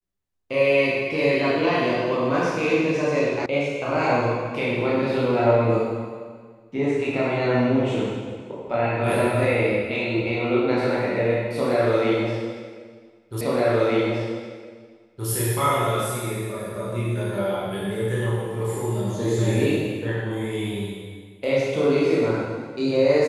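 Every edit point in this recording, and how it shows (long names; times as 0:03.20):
0:03.46: cut off before it has died away
0:13.41: the same again, the last 1.87 s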